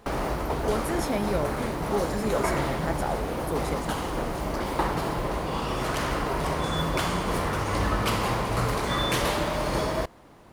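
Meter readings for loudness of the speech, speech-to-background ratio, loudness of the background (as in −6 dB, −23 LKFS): −32.0 LKFS, −4.0 dB, −28.0 LKFS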